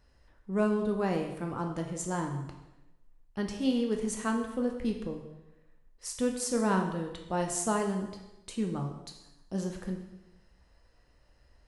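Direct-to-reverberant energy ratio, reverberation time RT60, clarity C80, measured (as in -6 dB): 2.5 dB, 0.95 s, 8.5 dB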